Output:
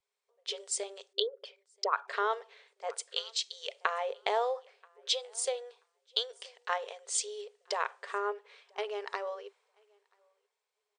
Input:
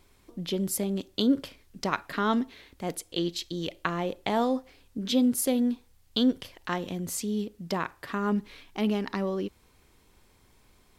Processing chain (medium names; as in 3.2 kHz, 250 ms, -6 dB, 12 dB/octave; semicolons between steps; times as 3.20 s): 1.13–2.08 s: resonances exaggerated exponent 2; feedback delay 982 ms, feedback 17%, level -22 dB; compression 6:1, threshold -27 dBFS, peak gain reduction 9 dB; FFT band-pass 390–9400 Hz; three bands expanded up and down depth 70%